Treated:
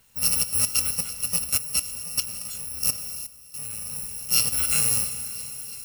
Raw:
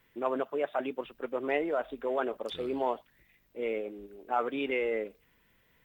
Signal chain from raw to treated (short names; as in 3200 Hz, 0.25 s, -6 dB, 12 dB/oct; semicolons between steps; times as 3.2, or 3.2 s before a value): FFT order left unsorted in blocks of 128 samples; thin delay 0.336 s, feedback 80%, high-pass 2900 Hz, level -16 dB; plate-style reverb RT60 4.4 s, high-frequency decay 0.85×, DRR 9 dB; 1.44–3.93 level quantiser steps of 14 dB; gain +8 dB